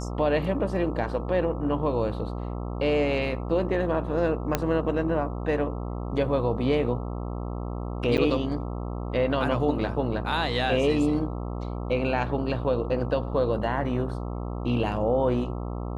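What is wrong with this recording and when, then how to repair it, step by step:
buzz 60 Hz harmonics 22 -32 dBFS
4.55 pop -8 dBFS
8.17–8.18 gap 8.9 ms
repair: de-click; de-hum 60 Hz, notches 22; interpolate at 8.17, 8.9 ms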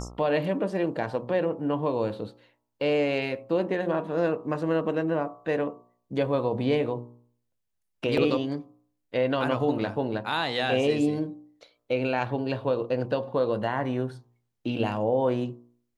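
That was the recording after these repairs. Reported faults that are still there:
none

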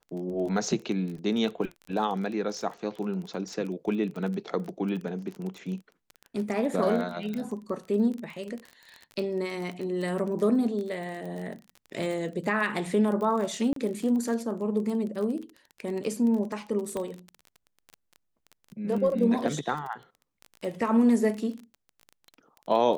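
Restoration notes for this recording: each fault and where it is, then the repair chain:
crackle 24/s -33 dBFS
7.34 pop -23 dBFS
13.73–13.76 gap 33 ms
16.97 pop -20 dBFS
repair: de-click; interpolate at 13.73, 33 ms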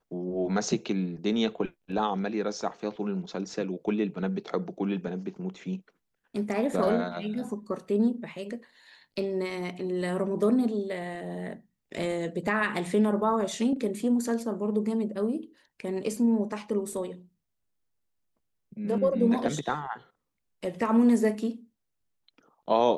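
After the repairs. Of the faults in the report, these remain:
16.97 pop

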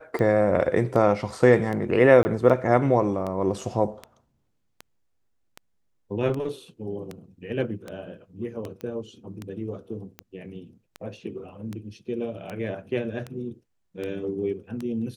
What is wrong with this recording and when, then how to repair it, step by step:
tick 78 rpm -20 dBFS
2.23–2.25 gap 20 ms
8.81 pop -24 dBFS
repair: de-click; interpolate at 2.23, 20 ms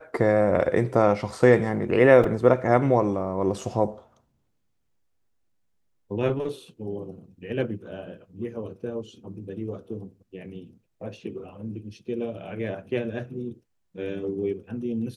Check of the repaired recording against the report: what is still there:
none

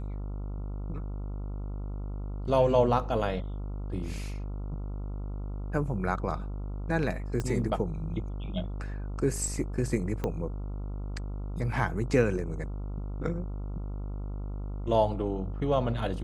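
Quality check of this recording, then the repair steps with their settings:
buzz 50 Hz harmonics 28 -35 dBFS
7.4 pop -19 dBFS
10.24 pop -18 dBFS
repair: de-click; de-hum 50 Hz, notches 28

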